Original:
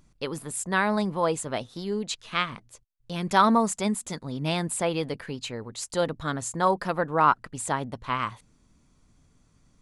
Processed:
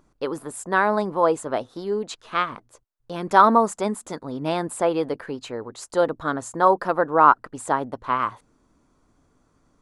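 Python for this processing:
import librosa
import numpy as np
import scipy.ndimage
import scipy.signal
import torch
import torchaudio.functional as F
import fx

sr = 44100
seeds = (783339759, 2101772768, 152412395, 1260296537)

y = fx.band_shelf(x, sr, hz=650.0, db=10.0, octaves=2.9)
y = F.gain(torch.from_numpy(y), -4.0).numpy()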